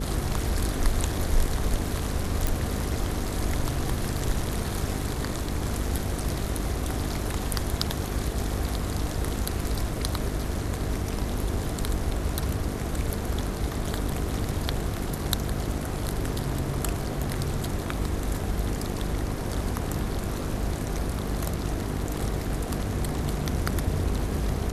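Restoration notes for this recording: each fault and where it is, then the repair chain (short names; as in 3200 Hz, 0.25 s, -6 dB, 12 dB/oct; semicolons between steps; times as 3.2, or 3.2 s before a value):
buzz 50 Hz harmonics 9 -33 dBFS
2.47 pop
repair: de-click; de-hum 50 Hz, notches 9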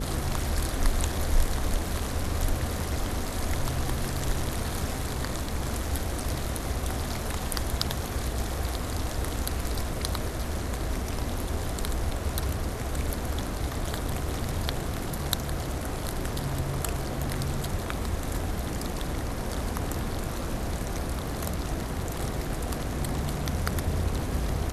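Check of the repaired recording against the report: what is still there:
none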